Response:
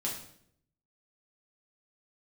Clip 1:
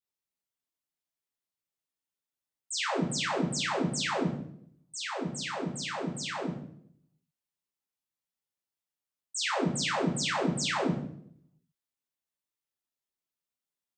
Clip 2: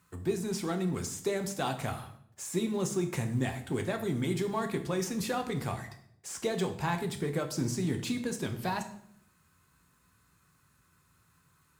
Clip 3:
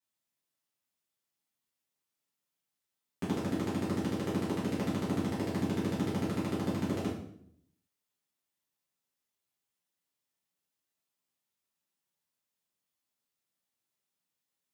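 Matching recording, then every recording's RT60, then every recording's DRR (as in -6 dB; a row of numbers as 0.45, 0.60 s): 1; 0.65, 0.70, 0.65 s; -4.5, 5.5, -8.5 dB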